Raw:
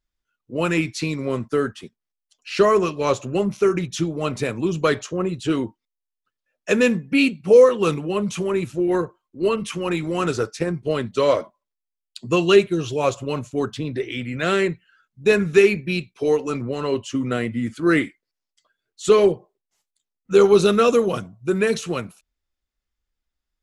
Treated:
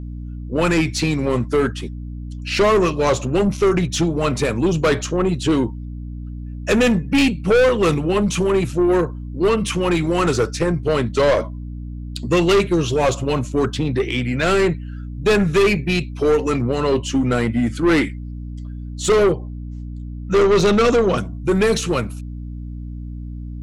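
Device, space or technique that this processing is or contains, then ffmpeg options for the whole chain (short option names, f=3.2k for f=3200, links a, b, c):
valve amplifier with mains hum: -filter_complex "[0:a]asettb=1/sr,asplit=3[a][b][c];[a]atrim=end=19.324[d];[b]atrim=start=19.32:end=21.18,asetpts=PTS-STARTPTS,afade=t=in:d=0.004:c=qsin,afade=t=out:st=1.856:d=0.004:c=qsin,lowpass=f=6.8k:w=0.5412,lowpass=f=6.8k:w=1.3066[e];[c]atrim=start=21.176[f];[d][e]acrossfade=d=0.004:c1=hsin:c2=qsin[g];[g][f]acrossfade=d=0.004:c1=qsin:c2=hsin,aeval=exprs='(tanh(8.91*val(0)+0.15)-tanh(0.15))/8.91':c=same,aeval=exprs='val(0)+0.0158*(sin(2*PI*60*n/s)+sin(2*PI*2*60*n/s)/2+sin(2*PI*3*60*n/s)/3+sin(2*PI*4*60*n/s)/4+sin(2*PI*5*60*n/s)/5)':c=same,volume=7.5dB"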